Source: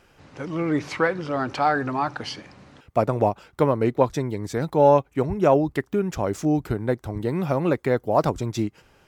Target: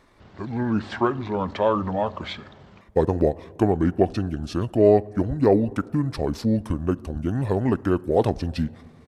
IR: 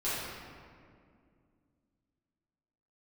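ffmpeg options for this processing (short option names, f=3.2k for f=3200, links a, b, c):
-filter_complex "[0:a]asplit=2[a][b];[1:a]atrim=start_sample=2205,highshelf=f=3.2k:g=-2[c];[b][c]afir=irnorm=-1:irlink=0,volume=-27dB[d];[a][d]amix=inputs=2:normalize=0,asetrate=32097,aresample=44100,atempo=1.37395"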